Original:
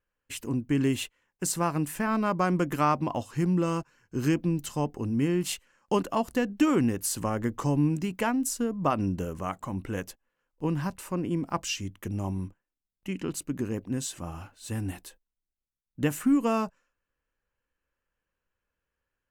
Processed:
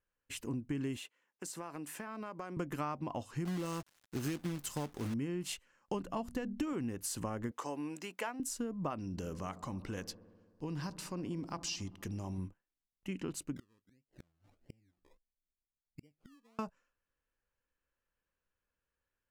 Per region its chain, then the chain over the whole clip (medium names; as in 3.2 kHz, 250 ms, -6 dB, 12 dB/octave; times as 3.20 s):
0.97–2.57 s: high-pass 260 Hz + compression, threshold -34 dBFS
3.45–5.14 s: treble shelf 7.1 kHz +11.5 dB + companded quantiser 4-bit
5.94–6.73 s: bass shelf 150 Hz +12 dB + hum notches 60/120/180/240 Hz
7.51–8.40 s: high-pass 480 Hz + tape noise reduction on one side only encoder only
8.98–12.38 s: peaking EQ 4.8 kHz +12 dB 0.84 oct + compression 2.5:1, threshold -31 dBFS + feedback echo behind a low-pass 66 ms, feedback 78%, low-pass 820 Hz, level -16 dB
13.56–16.59 s: inverse Chebyshev low-pass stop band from 4 kHz, stop band 80 dB + inverted gate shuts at -32 dBFS, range -35 dB + decimation with a swept rate 24×, swing 60% 1.5 Hz
whole clip: treble shelf 12 kHz -7.5 dB; compression, threshold -29 dBFS; trim -5 dB